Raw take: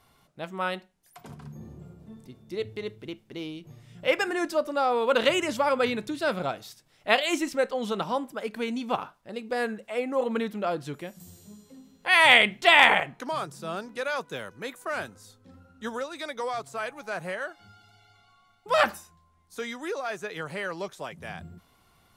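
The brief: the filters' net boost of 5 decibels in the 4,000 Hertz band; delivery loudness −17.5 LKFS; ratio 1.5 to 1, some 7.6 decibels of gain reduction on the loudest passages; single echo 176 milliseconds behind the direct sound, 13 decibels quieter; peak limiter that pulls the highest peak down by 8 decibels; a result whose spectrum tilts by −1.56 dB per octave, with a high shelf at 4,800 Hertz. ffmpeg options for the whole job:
ffmpeg -i in.wav -af "equalizer=frequency=4000:width_type=o:gain=8.5,highshelf=frequency=4800:gain=-4,acompressor=threshold=-31dB:ratio=1.5,alimiter=limit=-16dB:level=0:latency=1,aecho=1:1:176:0.224,volume=14.5dB" out.wav

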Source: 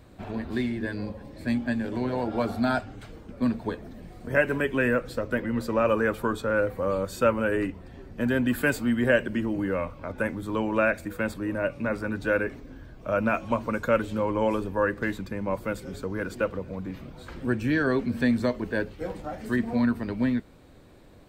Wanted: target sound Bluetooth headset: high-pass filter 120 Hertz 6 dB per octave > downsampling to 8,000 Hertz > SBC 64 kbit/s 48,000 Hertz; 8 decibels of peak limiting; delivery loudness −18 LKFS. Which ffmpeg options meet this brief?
ffmpeg -i in.wav -af "alimiter=limit=-15.5dB:level=0:latency=1,highpass=frequency=120:poles=1,aresample=8000,aresample=44100,volume=11dB" -ar 48000 -c:a sbc -b:a 64k out.sbc

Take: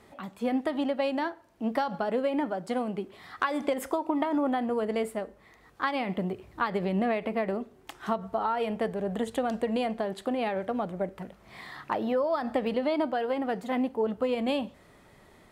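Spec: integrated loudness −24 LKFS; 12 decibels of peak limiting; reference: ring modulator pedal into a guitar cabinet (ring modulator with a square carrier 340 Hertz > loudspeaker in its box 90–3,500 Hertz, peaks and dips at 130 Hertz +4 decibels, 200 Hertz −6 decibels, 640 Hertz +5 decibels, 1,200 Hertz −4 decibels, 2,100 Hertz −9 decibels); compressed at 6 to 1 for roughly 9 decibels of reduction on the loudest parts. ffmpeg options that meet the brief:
ffmpeg -i in.wav -af "acompressor=threshold=-33dB:ratio=6,alimiter=level_in=5.5dB:limit=-24dB:level=0:latency=1,volume=-5.5dB,aeval=exprs='val(0)*sgn(sin(2*PI*340*n/s))':channel_layout=same,highpass=90,equalizer=frequency=130:width_type=q:width=4:gain=4,equalizer=frequency=200:width_type=q:width=4:gain=-6,equalizer=frequency=640:width_type=q:width=4:gain=5,equalizer=frequency=1200:width_type=q:width=4:gain=-4,equalizer=frequency=2100:width_type=q:width=4:gain=-9,lowpass=frequency=3500:width=0.5412,lowpass=frequency=3500:width=1.3066,volume=15dB" out.wav

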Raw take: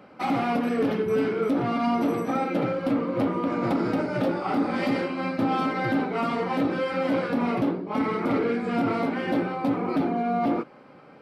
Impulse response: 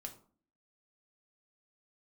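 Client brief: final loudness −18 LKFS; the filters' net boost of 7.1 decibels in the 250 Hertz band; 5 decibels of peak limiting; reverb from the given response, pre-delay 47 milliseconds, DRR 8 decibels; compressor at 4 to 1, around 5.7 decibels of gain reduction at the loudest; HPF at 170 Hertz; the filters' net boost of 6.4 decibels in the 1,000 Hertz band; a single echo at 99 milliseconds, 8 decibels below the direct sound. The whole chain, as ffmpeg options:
-filter_complex "[0:a]highpass=170,equalizer=frequency=250:width_type=o:gain=8.5,equalizer=frequency=1000:width_type=o:gain=8.5,acompressor=threshold=-20dB:ratio=4,alimiter=limit=-16.5dB:level=0:latency=1,aecho=1:1:99:0.398,asplit=2[link_01][link_02];[1:a]atrim=start_sample=2205,adelay=47[link_03];[link_02][link_03]afir=irnorm=-1:irlink=0,volume=-4dB[link_04];[link_01][link_04]amix=inputs=2:normalize=0,volume=6.5dB"

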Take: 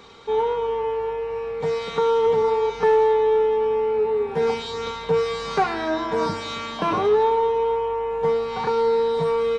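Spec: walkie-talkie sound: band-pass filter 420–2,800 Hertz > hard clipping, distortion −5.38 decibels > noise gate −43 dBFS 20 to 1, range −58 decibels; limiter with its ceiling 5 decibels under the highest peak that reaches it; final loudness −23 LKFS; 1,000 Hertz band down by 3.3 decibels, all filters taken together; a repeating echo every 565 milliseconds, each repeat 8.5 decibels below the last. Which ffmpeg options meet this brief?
ffmpeg -i in.wav -af "equalizer=frequency=1000:width_type=o:gain=-3.5,alimiter=limit=-16.5dB:level=0:latency=1,highpass=420,lowpass=2800,aecho=1:1:565|1130|1695|2260:0.376|0.143|0.0543|0.0206,asoftclip=type=hard:threshold=-32.5dB,agate=range=-58dB:threshold=-43dB:ratio=20,volume=11dB" out.wav

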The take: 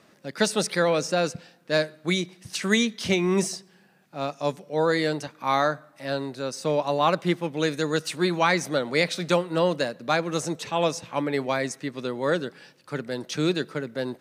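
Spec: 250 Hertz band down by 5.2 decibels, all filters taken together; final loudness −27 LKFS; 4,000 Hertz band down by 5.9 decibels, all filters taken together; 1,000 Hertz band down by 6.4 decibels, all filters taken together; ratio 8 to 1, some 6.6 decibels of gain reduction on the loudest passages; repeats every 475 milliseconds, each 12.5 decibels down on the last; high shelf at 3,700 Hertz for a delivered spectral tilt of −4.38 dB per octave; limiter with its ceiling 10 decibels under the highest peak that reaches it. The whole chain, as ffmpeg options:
ffmpeg -i in.wav -af "equalizer=frequency=250:width_type=o:gain=-7.5,equalizer=frequency=1000:width_type=o:gain=-7.5,highshelf=frequency=3700:gain=-5,equalizer=frequency=4000:width_type=o:gain=-3.5,acompressor=threshold=-27dB:ratio=8,alimiter=level_in=2.5dB:limit=-24dB:level=0:latency=1,volume=-2.5dB,aecho=1:1:475|950|1425:0.237|0.0569|0.0137,volume=10dB" out.wav

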